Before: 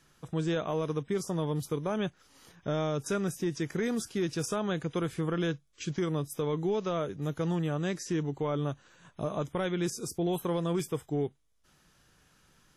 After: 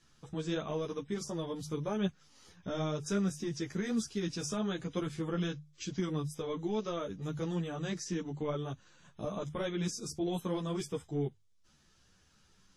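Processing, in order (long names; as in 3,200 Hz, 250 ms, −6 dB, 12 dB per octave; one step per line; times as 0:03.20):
low-pass filter 5,100 Hz 12 dB per octave
bass and treble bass +5 dB, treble +12 dB
mains-hum notches 50/100/150 Hz
string-ensemble chorus
level −2.5 dB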